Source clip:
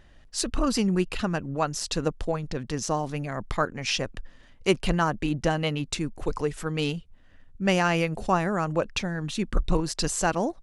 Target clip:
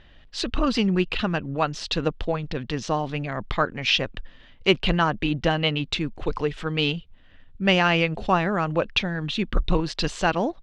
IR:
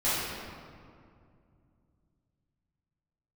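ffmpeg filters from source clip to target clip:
-af "lowpass=frequency=3400:width_type=q:width=2.2,volume=2dB"

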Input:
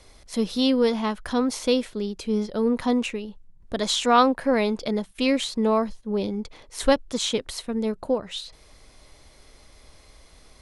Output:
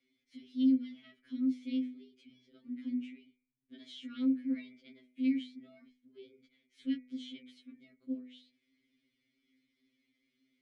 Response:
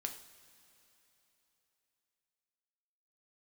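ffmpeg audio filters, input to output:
-filter_complex "[0:a]asplit=3[link_01][link_02][link_03];[link_01]bandpass=frequency=270:width_type=q:width=8,volume=0dB[link_04];[link_02]bandpass=frequency=2290:width_type=q:width=8,volume=-6dB[link_05];[link_03]bandpass=frequency=3010:width_type=q:width=8,volume=-9dB[link_06];[link_04][link_05][link_06]amix=inputs=3:normalize=0,bandreject=frequency=63.03:width_type=h:width=4,bandreject=frequency=126.06:width_type=h:width=4,bandreject=frequency=189.09:width_type=h:width=4,bandreject=frequency=252.12:width_type=h:width=4,bandreject=frequency=315.15:width_type=h:width=4,bandreject=frequency=378.18:width_type=h:width=4,bandreject=frequency=441.21:width_type=h:width=4,bandreject=frequency=504.24:width_type=h:width=4,bandreject=frequency=567.27:width_type=h:width=4,bandreject=frequency=630.3:width_type=h:width=4,bandreject=frequency=693.33:width_type=h:width=4,bandreject=frequency=756.36:width_type=h:width=4,bandreject=frequency=819.39:width_type=h:width=4,bandreject=frequency=882.42:width_type=h:width=4,bandreject=frequency=945.45:width_type=h:width=4,bandreject=frequency=1008.48:width_type=h:width=4,bandreject=frequency=1071.51:width_type=h:width=4,bandreject=frequency=1134.54:width_type=h:width=4,bandreject=frequency=1197.57:width_type=h:width=4,bandreject=frequency=1260.6:width_type=h:width=4,bandreject=frequency=1323.63:width_type=h:width=4,bandreject=frequency=1386.66:width_type=h:width=4,bandreject=frequency=1449.69:width_type=h:width=4,bandreject=frequency=1512.72:width_type=h:width=4,bandreject=frequency=1575.75:width_type=h:width=4,bandreject=frequency=1638.78:width_type=h:width=4,bandreject=frequency=1701.81:width_type=h:width=4,bandreject=frequency=1764.84:width_type=h:width=4,bandreject=frequency=1827.87:width_type=h:width=4,bandreject=frequency=1890.9:width_type=h:width=4,bandreject=frequency=1953.93:width_type=h:width=4,bandreject=frequency=2016.96:width_type=h:width=4,bandreject=frequency=2079.99:width_type=h:width=4,bandreject=frequency=2143.02:width_type=h:width=4,bandreject=frequency=2206.05:width_type=h:width=4,bandreject=frequency=2269.08:width_type=h:width=4,bandreject=frequency=2332.11:width_type=h:width=4,bandreject=frequency=2395.14:width_type=h:width=4,bandreject=frequency=2458.17:width_type=h:width=4,afftfilt=real='re*2.45*eq(mod(b,6),0)':imag='im*2.45*eq(mod(b,6),0)':win_size=2048:overlap=0.75,volume=-7.5dB"

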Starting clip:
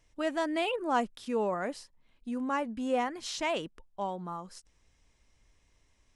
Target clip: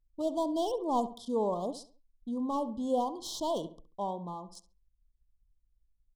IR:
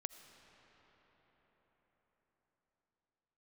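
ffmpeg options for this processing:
-filter_complex "[0:a]anlmdn=0.00398,acrossover=split=950[link_01][link_02];[link_02]aeval=exprs='clip(val(0),-1,0.01)':channel_layout=same[link_03];[link_01][link_03]amix=inputs=2:normalize=0,asuperstop=centerf=1900:order=20:qfactor=0.95,asplit=2[link_04][link_05];[link_05]adelay=68,lowpass=frequency=2400:poles=1,volume=-12.5dB,asplit=2[link_06][link_07];[link_07]adelay=68,lowpass=frequency=2400:poles=1,volume=0.36,asplit=2[link_08][link_09];[link_09]adelay=68,lowpass=frequency=2400:poles=1,volume=0.36,asplit=2[link_10][link_11];[link_11]adelay=68,lowpass=frequency=2400:poles=1,volume=0.36[link_12];[link_04][link_06][link_08][link_10][link_12]amix=inputs=5:normalize=0"

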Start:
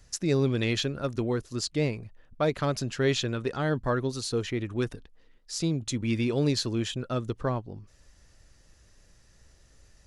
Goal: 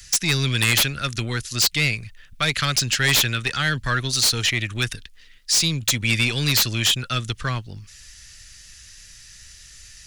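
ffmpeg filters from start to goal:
ffmpeg -i in.wav -filter_complex "[0:a]acrossover=split=170|1100|1600[link_01][link_02][link_03][link_04];[link_01]acontrast=86[link_05];[link_02]aeval=exprs='(tanh(31.6*val(0)+0.75)-tanh(0.75))/31.6':channel_layout=same[link_06];[link_04]aeval=exprs='0.211*sin(PI/2*7.08*val(0)/0.211)':channel_layout=same[link_07];[link_05][link_06][link_03][link_07]amix=inputs=4:normalize=0" out.wav

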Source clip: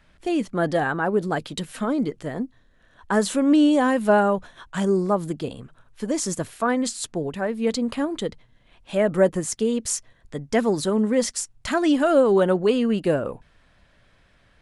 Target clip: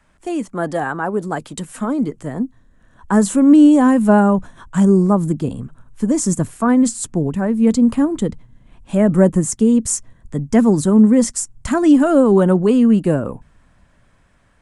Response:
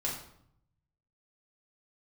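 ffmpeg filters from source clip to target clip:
-filter_complex "[0:a]equalizer=frequency=250:width_type=o:width=1:gain=3,equalizer=frequency=1000:width_type=o:width=1:gain=6,equalizer=frequency=4000:width_type=o:width=1:gain=-6,equalizer=frequency=8000:width_type=o:width=1:gain=10,acrossover=split=270|730|2100[link_01][link_02][link_03][link_04];[link_01]dynaudnorm=framelen=730:gausssize=7:maxgain=15dB[link_05];[link_05][link_02][link_03][link_04]amix=inputs=4:normalize=0,volume=-1.5dB"

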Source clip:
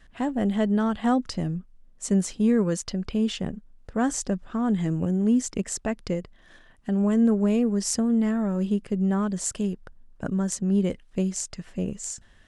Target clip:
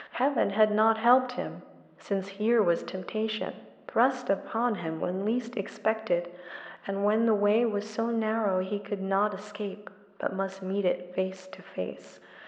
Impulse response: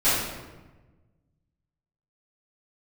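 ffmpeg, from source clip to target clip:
-filter_complex "[0:a]acompressor=mode=upward:threshold=-31dB:ratio=2.5,highpass=460,equalizer=frequency=570:width_type=q:width=4:gain=7,equalizer=frequency=910:width_type=q:width=4:gain=3,equalizer=frequency=1300:width_type=q:width=4:gain=5,lowpass=frequency=3300:width=0.5412,lowpass=frequency=3300:width=1.3066,asplit=2[link_01][link_02];[1:a]atrim=start_sample=2205[link_03];[link_02][link_03]afir=irnorm=-1:irlink=0,volume=-28dB[link_04];[link_01][link_04]amix=inputs=2:normalize=0,volume=3dB"

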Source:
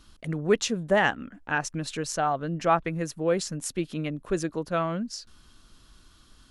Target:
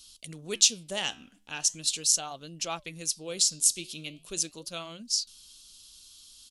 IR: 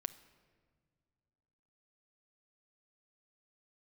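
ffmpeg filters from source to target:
-af "flanger=delay=2.7:depth=9.9:regen=-84:speed=0.4:shape=sinusoidal,aresample=32000,aresample=44100,aexciter=amount=14.2:drive=5:freq=2700,volume=-9.5dB"

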